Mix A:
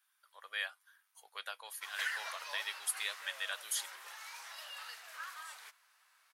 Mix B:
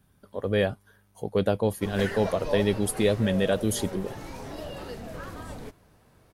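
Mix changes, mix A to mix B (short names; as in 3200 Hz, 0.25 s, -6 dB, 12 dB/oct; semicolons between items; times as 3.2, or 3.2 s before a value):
speech +4.0 dB; master: remove HPF 1200 Hz 24 dB/oct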